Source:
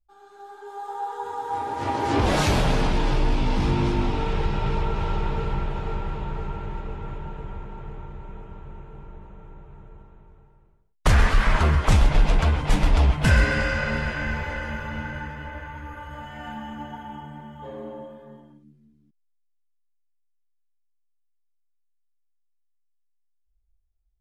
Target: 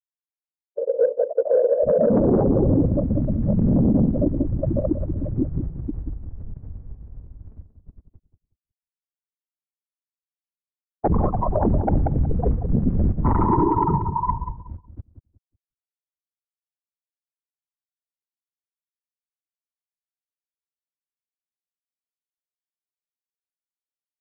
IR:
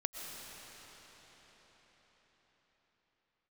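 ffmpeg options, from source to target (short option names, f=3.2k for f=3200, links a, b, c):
-filter_complex "[0:a]afftfilt=real='re*gte(hypot(re,im),0.251)':imag='im*gte(hypot(re,im),0.251)':win_size=1024:overlap=0.75,agate=range=-15dB:threshold=-44dB:ratio=16:detection=peak,highpass=f=96:p=1,tiltshelf=f=1.1k:g=6.5,aeval=exprs='0.531*(cos(1*acos(clip(val(0)/0.531,-1,1)))-cos(1*PI/2))+0.0335*(cos(2*acos(clip(val(0)/0.531,-1,1)))-cos(2*PI/2))':c=same,afftfilt=real='hypot(re,im)*cos(2*PI*random(0))':imag='hypot(re,im)*sin(2*PI*random(1))':win_size=512:overlap=0.75,aresample=11025,asoftclip=type=tanh:threshold=-22dB,aresample=44100,asetrate=27781,aresample=44100,atempo=1.5874,acrossover=split=200 2200:gain=0.2 1 0.0794[a][b][c];[a][b][c]amix=inputs=3:normalize=0,asplit=2[d][e];[e]adelay=184,lowpass=f=1.4k:p=1,volume=-9.5dB,asplit=2[f][g];[g]adelay=184,lowpass=f=1.4k:p=1,volume=0.24,asplit=2[h][i];[i]adelay=184,lowpass=f=1.4k:p=1,volume=0.24[j];[f][h][j]amix=inputs=3:normalize=0[k];[d][k]amix=inputs=2:normalize=0,alimiter=level_in=30dB:limit=-1dB:release=50:level=0:latency=1,volume=-9dB"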